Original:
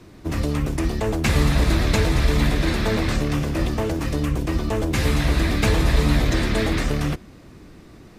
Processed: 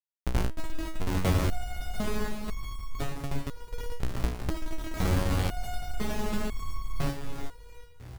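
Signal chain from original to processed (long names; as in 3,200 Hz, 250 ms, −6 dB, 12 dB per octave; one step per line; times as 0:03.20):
comparator with hysteresis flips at −16.5 dBFS
0:02.23–0:04.49: gate pattern "xxxx.x..x.x.." 158 BPM −12 dB
echo with shifted repeats 367 ms, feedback 46%, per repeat −40 Hz, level −8.5 dB
step-sequenced resonator 2 Hz 61–1,100 Hz
level +7 dB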